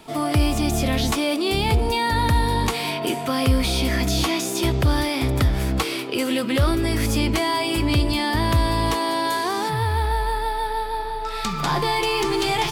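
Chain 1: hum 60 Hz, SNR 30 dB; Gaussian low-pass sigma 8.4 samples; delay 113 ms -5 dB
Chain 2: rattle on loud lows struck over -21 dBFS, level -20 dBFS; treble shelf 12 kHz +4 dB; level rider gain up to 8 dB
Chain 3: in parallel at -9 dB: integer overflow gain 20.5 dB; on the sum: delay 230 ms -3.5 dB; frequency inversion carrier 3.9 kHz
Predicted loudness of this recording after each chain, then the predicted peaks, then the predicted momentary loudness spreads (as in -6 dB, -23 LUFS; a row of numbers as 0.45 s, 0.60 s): -23.5 LUFS, -15.5 LUFS, -16.0 LUFS; -8.0 dBFS, -2.5 dBFS, -3.5 dBFS; 7 LU, 5 LU, 6 LU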